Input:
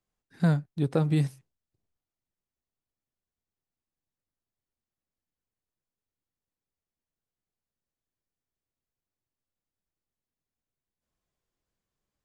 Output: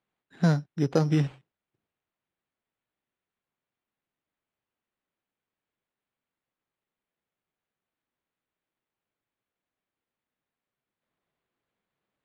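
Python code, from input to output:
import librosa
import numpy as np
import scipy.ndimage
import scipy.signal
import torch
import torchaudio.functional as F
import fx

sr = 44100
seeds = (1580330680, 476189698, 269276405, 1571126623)

y = scipy.signal.sosfilt(scipy.signal.butter(2, 150.0, 'highpass', fs=sr, output='sos'), x)
y = np.repeat(y[::8], 8)[:len(y)]
y = scipy.signal.sosfilt(scipy.signal.butter(2, 4900.0, 'lowpass', fs=sr, output='sos'), y)
y = F.gain(torch.from_numpy(y), 3.0).numpy()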